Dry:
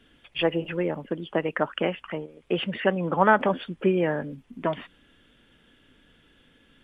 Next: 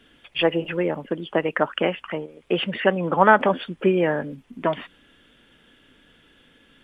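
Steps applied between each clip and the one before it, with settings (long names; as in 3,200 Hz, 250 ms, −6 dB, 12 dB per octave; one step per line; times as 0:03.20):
low-shelf EQ 190 Hz −5.5 dB
level +4.5 dB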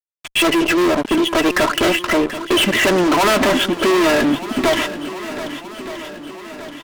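comb filter 3 ms, depth 81%
fuzz pedal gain 33 dB, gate −42 dBFS
on a send: feedback echo with a long and a short gap by turns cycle 1,221 ms, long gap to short 1.5 to 1, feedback 50%, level −13 dB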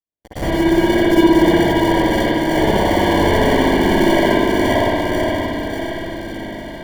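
feedback delay that plays each chunk backwards 290 ms, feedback 71%, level −3 dB
decimation without filtering 34×
spring reverb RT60 1.9 s, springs 60 ms, chirp 40 ms, DRR −9.5 dB
level −11.5 dB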